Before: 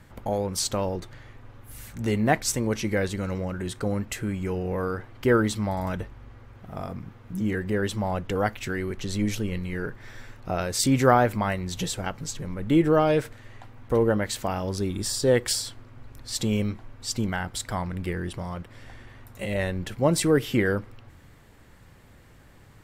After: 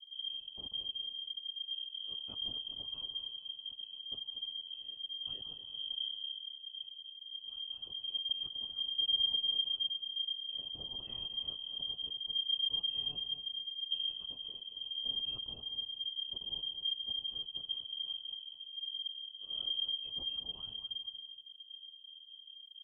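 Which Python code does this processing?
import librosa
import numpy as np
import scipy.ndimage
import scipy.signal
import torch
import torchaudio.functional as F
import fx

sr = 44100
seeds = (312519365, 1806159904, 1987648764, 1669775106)

p1 = np.r_[np.sort(x[:len(x) // 8 * 8].reshape(-1, 8), axis=1).ravel(), x[len(x) // 8 * 8:]]
p2 = scipy.signal.sosfilt(scipy.signal.cheby2(4, 50, [130.0, 1700.0], 'bandstop', fs=sr, output='sos'), p1)
p3 = fx.env_lowpass(p2, sr, base_hz=770.0, full_db=-27.0)
p4 = p3 + fx.echo_feedback(p3, sr, ms=231, feedback_pct=33, wet_db=-9.5, dry=0)
p5 = fx.freq_invert(p4, sr, carrier_hz=3200)
y = p5 * 10.0 ** (2.5 / 20.0)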